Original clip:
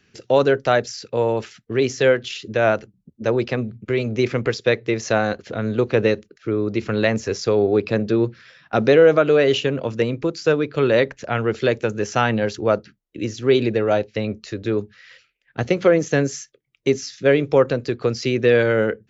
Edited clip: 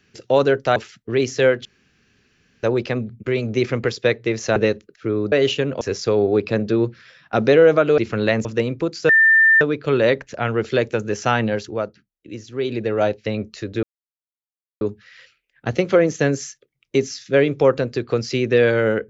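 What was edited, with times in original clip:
0:00.76–0:01.38: remove
0:02.27–0:03.25: fill with room tone
0:05.18–0:05.98: remove
0:06.74–0:07.21: swap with 0:09.38–0:09.87
0:10.51: insert tone 1,790 Hz −9.5 dBFS 0.52 s
0:12.36–0:13.94: duck −8 dB, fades 0.41 s
0:14.73: splice in silence 0.98 s

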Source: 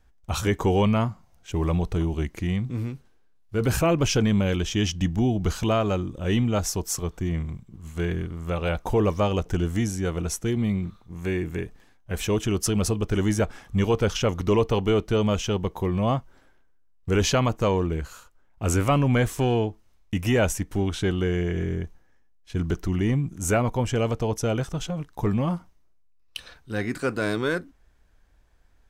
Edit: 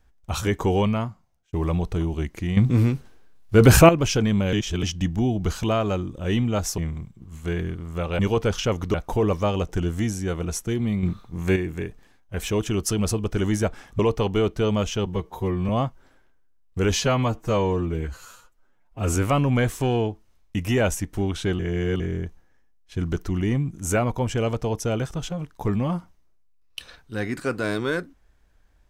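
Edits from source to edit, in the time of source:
0:00.78–0:01.53: fade out
0:02.57–0:03.89: clip gain +10.5 dB
0:04.53–0:04.83: reverse
0:06.78–0:07.30: remove
0:10.80–0:11.33: clip gain +7 dB
0:13.76–0:14.51: move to 0:08.71
0:15.58–0:16.00: time-stretch 1.5×
0:17.27–0:18.73: time-stretch 1.5×
0:21.17–0:21.58: reverse

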